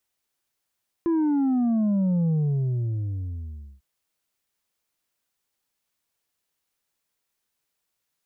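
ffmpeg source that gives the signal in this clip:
-f lavfi -i "aevalsrc='0.1*clip((2.75-t)/1.52,0,1)*tanh(1.58*sin(2*PI*340*2.75/log(65/340)*(exp(log(65/340)*t/2.75)-1)))/tanh(1.58)':d=2.75:s=44100"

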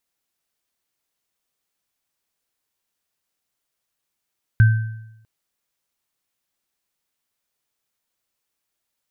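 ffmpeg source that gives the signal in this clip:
-f lavfi -i "aevalsrc='0.447*pow(10,-3*t/0.87)*sin(2*PI*111*t)+0.1*pow(10,-3*t/0.75)*sin(2*PI*1550*t)':d=0.65:s=44100"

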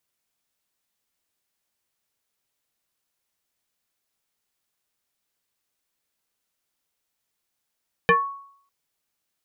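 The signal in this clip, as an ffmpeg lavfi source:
-f lavfi -i "aevalsrc='0.282*pow(10,-3*t/0.62)*sin(2*PI*1110*t+2.3*pow(10,-3*t/0.25)*sin(2*PI*0.58*1110*t))':d=0.6:s=44100"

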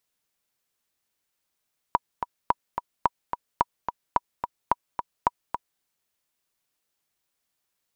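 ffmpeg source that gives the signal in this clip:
-f lavfi -i "aevalsrc='pow(10,(-6-8*gte(mod(t,2*60/217),60/217))/20)*sin(2*PI*966*mod(t,60/217))*exp(-6.91*mod(t,60/217)/0.03)':d=3.87:s=44100"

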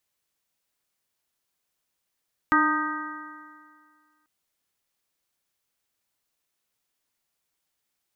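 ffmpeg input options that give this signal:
-f lavfi -i "aevalsrc='0.0794*pow(10,-3*t/1.95)*sin(2*PI*302.45*t)+0.00841*pow(10,-3*t/1.95)*sin(2*PI*607.61*t)+0.0531*pow(10,-3*t/1.95)*sin(2*PI*918.15*t)+0.119*pow(10,-3*t/1.95)*sin(2*PI*1236.65*t)+0.0794*pow(10,-3*t/1.95)*sin(2*PI*1565.6*t)+0.0447*pow(10,-3*t/1.95)*sin(2*PI*1907.34*t)':d=1.74:s=44100"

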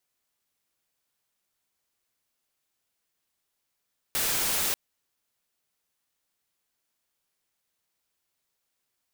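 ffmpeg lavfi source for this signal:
-f lavfi -i "anoisesrc=c=white:a=0.0774:d=0.59:r=44100:seed=1"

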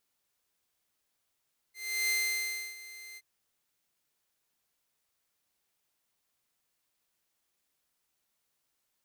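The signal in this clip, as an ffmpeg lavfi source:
-f lavfi -i "aevalsrc='0.0631*(2*mod(2080*t,1)-1)':d=1.472:s=44100,afade=t=in:d=0.351,afade=t=out:st=0.351:d=0.658:silence=0.119,afade=t=out:st=1.43:d=0.042"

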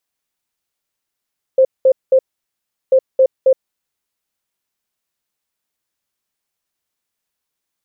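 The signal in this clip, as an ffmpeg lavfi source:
-f lavfi -i "aevalsrc='0.473*sin(2*PI*525*t)*clip(min(mod(mod(t,1.34),0.27),0.07-mod(mod(t,1.34),0.27))/0.005,0,1)*lt(mod(t,1.34),0.81)':d=2.68:s=44100"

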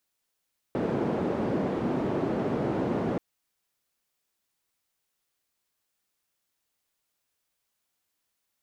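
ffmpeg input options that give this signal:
-f lavfi -i "anoisesrc=c=white:d=2.43:r=44100:seed=1,highpass=f=170,lowpass=f=370,volume=-3.5dB"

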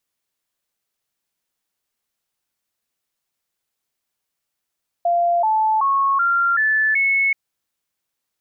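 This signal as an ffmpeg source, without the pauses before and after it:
-f lavfi -i "aevalsrc='0.188*clip(min(mod(t,0.38),0.38-mod(t,0.38))/0.005,0,1)*sin(2*PI*692*pow(2,floor(t/0.38)/3)*mod(t,0.38))':d=2.28:s=44100"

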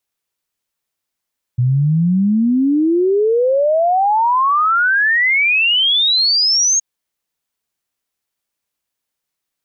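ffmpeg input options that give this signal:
-f lavfi -i "aevalsrc='0.282*clip(min(t,5.22-t)/0.01,0,1)*sin(2*PI*120*5.22/log(6600/120)*(exp(log(6600/120)*t/5.22)-1))':d=5.22:s=44100"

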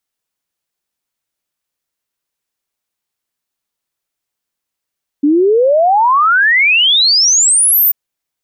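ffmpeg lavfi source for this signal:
-f lavfi -i "aevalsrc='0.447*clip(min(t,2.69-t)/0.01,0,1)*sin(2*PI*280*2.69/log(15000/280)*(exp(log(15000/280)*t/2.69)-1))':d=2.69:s=44100"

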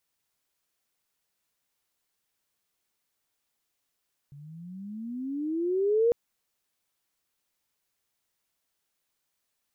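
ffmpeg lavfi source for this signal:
-f lavfi -i "aevalsrc='pow(10,(-18.5+25.5*(t/1.8-1))/20)*sin(2*PI*139*1.8/(21.5*log(2)/12)*(exp(21.5*log(2)/12*t/1.8)-1))':d=1.8:s=44100"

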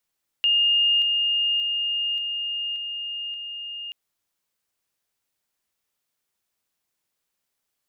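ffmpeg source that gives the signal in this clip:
-f lavfi -i "aevalsrc='pow(10,(-16.5-3*floor(t/0.58))/20)*sin(2*PI*2830*t)':d=3.48:s=44100"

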